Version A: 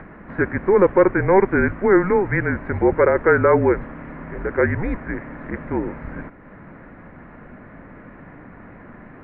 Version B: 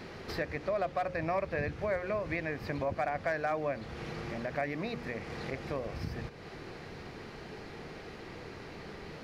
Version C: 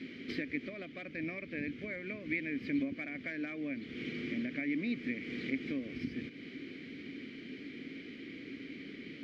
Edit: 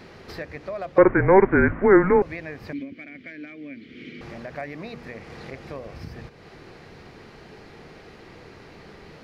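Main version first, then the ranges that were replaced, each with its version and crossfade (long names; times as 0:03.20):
B
0:00.98–0:02.22: punch in from A
0:02.73–0:04.21: punch in from C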